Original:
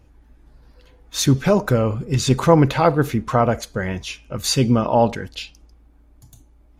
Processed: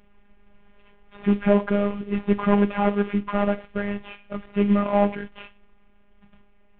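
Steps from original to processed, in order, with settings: CVSD coder 16 kbps; robot voice 203 Hz

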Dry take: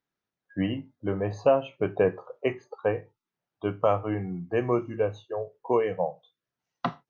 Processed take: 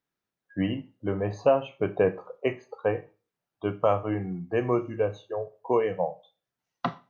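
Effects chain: Schroeder reverb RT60 0.37 s, combs from 28 ms, DRR 16 dB

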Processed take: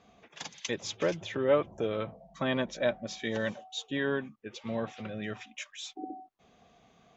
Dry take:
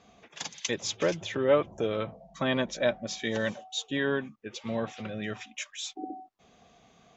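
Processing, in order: treble shelf 6.1 kHz -8 dB; trim -2 dB

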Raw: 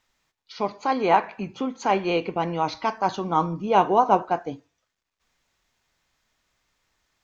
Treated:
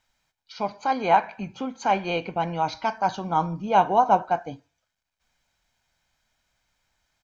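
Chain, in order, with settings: comb 1.3 ms, depth 48%; trim -2 dB

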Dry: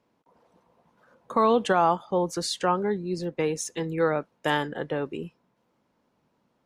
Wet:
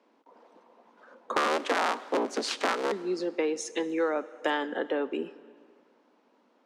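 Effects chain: 1.36–2.92 s: cycle switcher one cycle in 3, inverted; steep high-pass 230 Hz 48 dB/octave; compression 2.5:1, threshold -35 dBFS, peak gain reduction 13 dB; distance through air 77 m; plate-style reverb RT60 2.1 s, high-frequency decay 0.85×, DRR 16 dB; trim +6.5 dB

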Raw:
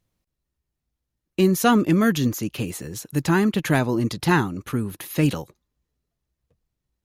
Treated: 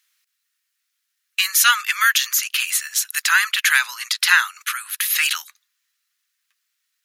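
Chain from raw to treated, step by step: steep high-pass 1.4 kHz 36 dB/octave; in parallel at +2 dB: peak limiter -23.5 dBFS, peak gain reduction 11 dB; on the sum: trim +8.5 dB

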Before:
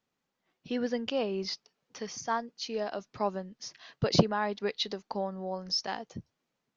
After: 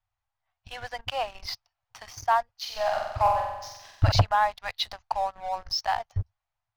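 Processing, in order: elliptic band-stop 100–730 Hz, stop band 40 dB; tilt EQ -3.5 dB/octave; waveshaping leveller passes 2; 2.57–4.12 s: flutter echo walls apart 7.9 m, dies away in 0.96 s; trim +2.5 dB

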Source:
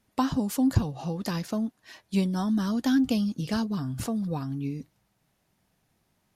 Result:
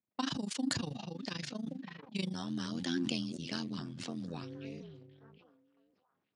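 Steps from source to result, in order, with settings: repeats whose band climbs or falls 563 ms, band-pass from 160 Hz, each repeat 1.4 oct, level -10 dB; AM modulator 25 Hz, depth 90%, from 2.33 s modulator 85 Hz, from 4.41 s modulator 240 Hz; level-controlled noise filter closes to 1.1 kHz, open at -27.5 dBFS; bass shelf 190 Hz +6.5 dB; gate -43 dBFS, range -9 dB; frequency weighting D; resampled via 22.05 kHz; high-pass 110 Hz; decay stretcher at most 37 dB/s; trim -9 dB

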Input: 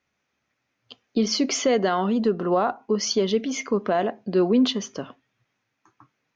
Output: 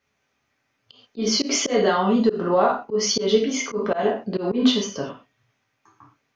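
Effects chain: gated-style reverb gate 150 ms falling, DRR -2 dB; slow attack 123 ms

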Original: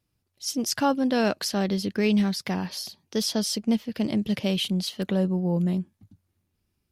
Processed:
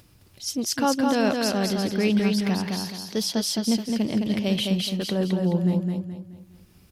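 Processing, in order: upward compressor, threshold -39 dBFS; feedback delay 213 ms, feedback 37%, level -3.5 dB

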